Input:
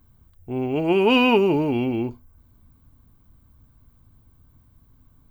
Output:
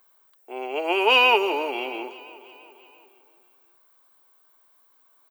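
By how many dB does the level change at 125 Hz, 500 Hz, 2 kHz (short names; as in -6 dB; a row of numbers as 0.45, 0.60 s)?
under -35 dB, -4.0 dB, +5.0 dB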